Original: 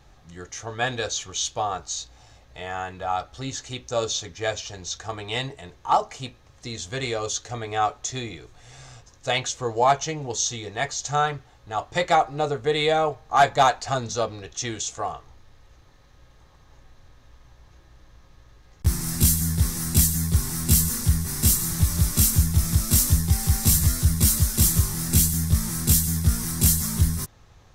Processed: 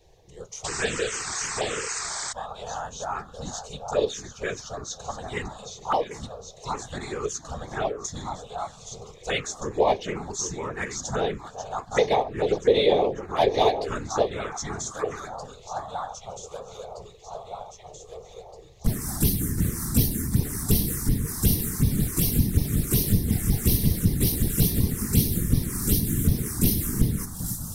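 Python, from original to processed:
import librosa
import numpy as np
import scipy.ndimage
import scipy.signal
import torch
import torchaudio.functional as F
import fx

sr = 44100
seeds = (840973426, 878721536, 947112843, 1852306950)

y = fx.echo_alternate(x, sr, ms=785, hz=1500.0, feedback_pct=71, wet_db=-7.5)
y = fx.spec_paint(y, sr, seeds[0], shape='noise', start_s=0.64, length_s=1.69, low_hz=440.0, high_hz=8400.0, level_db=-27.0)
y = fx.whisperise(y, sr, seeds[1])
y = fx.peak_eq(y, sr, hz=440.0, db=10.0, octaves=0.51)
y = fx.env_phaser(y, sr, low_hz=220.0, high_hz=1400.0, full_db=-15.0)
y = F.gain(torch.from_numpy(y), -1.5).numpy()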